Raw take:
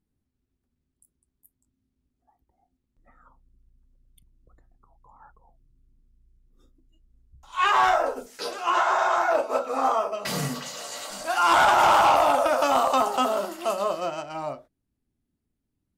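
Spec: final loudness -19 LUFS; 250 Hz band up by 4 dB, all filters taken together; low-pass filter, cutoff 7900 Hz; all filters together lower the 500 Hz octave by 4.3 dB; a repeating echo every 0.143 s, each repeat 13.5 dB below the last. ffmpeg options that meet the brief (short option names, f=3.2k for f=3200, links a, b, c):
-af "lowpass=7.9k,equalizer=f=250:t=o:g=7,equalizer=f=500:t=o:g=-7.5,aecho=1:1:143|286:0.211|0.0444,volume=5.5dB"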